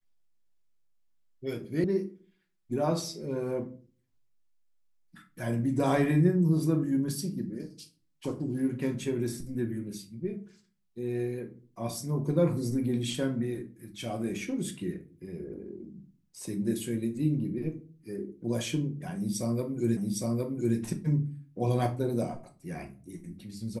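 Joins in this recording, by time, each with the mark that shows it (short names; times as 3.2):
1.84 sound cut off
19.97 repeat of the last 0.81 s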